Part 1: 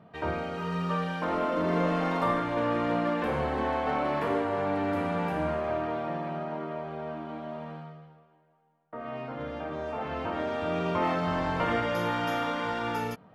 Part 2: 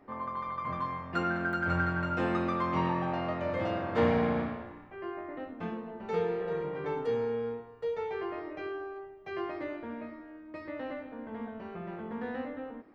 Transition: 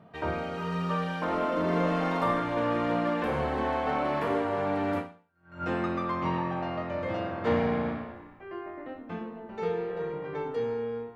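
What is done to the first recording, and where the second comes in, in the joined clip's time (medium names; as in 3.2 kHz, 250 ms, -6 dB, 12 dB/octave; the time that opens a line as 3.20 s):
part 1
5.31 s: go over to part 2 from 1.82 s, crossfade 0.66 s exponential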